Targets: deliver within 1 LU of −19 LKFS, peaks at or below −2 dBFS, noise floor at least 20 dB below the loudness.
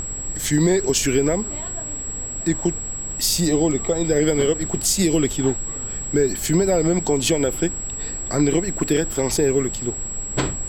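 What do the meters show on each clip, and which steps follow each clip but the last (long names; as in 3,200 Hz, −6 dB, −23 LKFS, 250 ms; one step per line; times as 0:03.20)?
interfering tone 7,700 Hz; level of the tone −28 dBFS; background noise floor −30 dBFS; target noise floor −41 dBFS; integrated loudness −21.0 LKFS; sample peak −7.0 dBFS; target loudness −19.0 LKFS
→ notch filter 7,700 Hz, Q 30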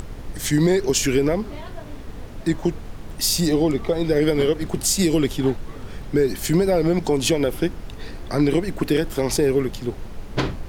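interfering tone none found; background noise floor −36 dBFS; target noise floor −42 dBFS
→ noise reduction from a noise print 6 dB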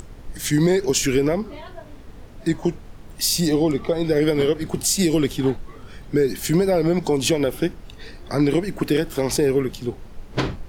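background noise floor −41 dBFS; target noise floor −42 dBFS
→ noise reduction from a noise print 6 dB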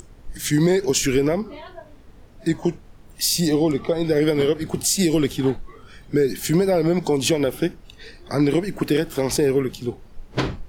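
background noise floor −46 dBFS; integrated loudness −21.5 LKFS; sample peak −8.5 dBFS; target loudness −19.0 LKFS
→ level +2.5 dB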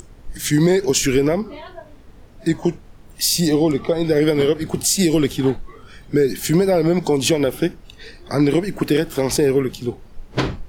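integrated loudness −19.0 LKFS; sample peak −6.0 dBFS; background noise floor −44 dBFS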